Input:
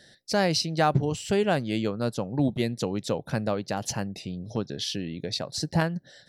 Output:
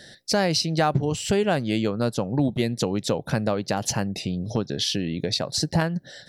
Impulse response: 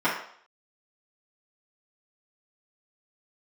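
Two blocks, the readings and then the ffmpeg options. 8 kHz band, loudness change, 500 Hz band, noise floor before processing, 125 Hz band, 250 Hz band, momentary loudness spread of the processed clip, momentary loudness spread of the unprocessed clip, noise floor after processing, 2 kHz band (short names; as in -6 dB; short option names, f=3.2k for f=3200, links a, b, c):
+5.5 dB, +3.0 dB, +2.5 dB, -57 dBFS, +3.0 dB, +3.5 dB, 5 LU, 9 LU, -50 dBFS, +2.0 dB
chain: -af "acompressor=threshold=-32dB:ratio=2,volume=8.5dB"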